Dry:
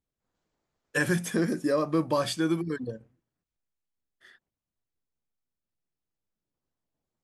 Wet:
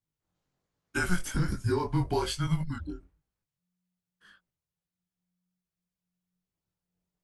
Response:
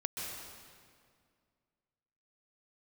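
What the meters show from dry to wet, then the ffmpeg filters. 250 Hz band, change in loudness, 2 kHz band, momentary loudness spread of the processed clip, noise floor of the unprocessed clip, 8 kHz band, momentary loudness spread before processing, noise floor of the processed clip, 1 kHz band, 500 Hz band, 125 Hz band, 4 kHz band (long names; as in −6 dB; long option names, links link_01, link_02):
−5.0 dB, −3.0 dB, −3.0 dB, 9 LU, below −85 dBFS, −1.5 dB, 8 LU, below −85 dBFS, −1.0 dB, −5.5 dB, +4.0 dB, −1.5 dB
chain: -af "afreqshift=-180,flanger=delay=18.5:depth=4.6:speed=1.2,volume=1.5dB"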